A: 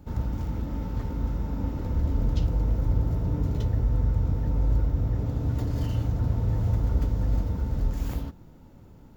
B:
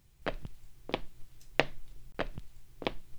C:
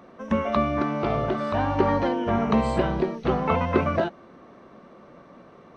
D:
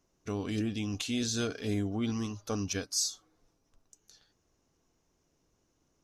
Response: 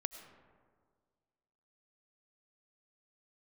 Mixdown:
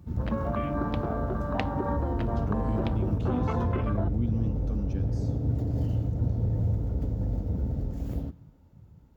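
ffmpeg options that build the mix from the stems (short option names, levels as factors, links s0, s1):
-filter_complex "[0:a]volume=1.12,asplit=2[s0][s1];[s1]volume=0.119[s2];[1:a]volume=0.473[s3];[2:a]volume=0.562[s4];[3:a]acrossover=split=260[s5][s6];[s6]acompressor=threshold=0.00316:ratio=2[s7];[s5][s7]amix=inputs=2:normalize=0,bass=f=250:g=6,treble=f=4000:g=-14,adelay=2200,volume=0.841,asplit=2[s8][s9];[s9]volume=0.596[s10];[s0][s4][s8]amix=inputs=3:normalize=0,afwtdn=0.02,alimiter=limit=0.119:level=0:latency=1:release=156,volume=1[s11];[4:a]atrim=start_sample=2205[s12];[s2][s10]amix=inputs=2:normalize=0[s13];[s13][s12]afir=irnorm=-1:irlink=0[s14];[s3][s11][s14]amix=inputs=3:normalize=0,highpass=65"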